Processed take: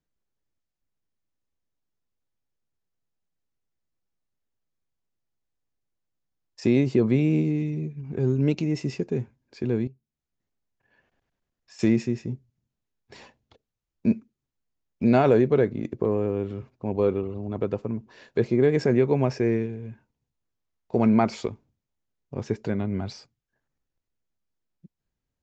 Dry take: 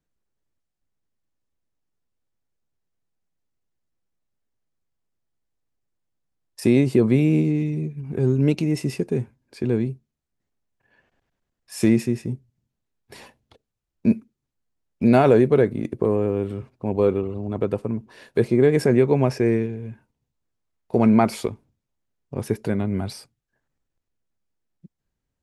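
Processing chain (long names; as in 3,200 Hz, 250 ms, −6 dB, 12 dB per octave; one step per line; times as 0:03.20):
0:09.87–0:11.79: downward compressor 5 to 1, threshold −44 dBFS, peak gain reduction 15.5 dB
downsampling to 16,000 Hz
level −3.5 dB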